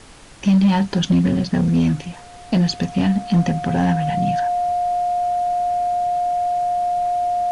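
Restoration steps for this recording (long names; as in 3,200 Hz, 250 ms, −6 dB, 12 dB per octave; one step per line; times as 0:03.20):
clipped peaks rebuilt −10 dBFS
notch filter 710 Hz, Q 30
noise reduction from a noise print 25 dB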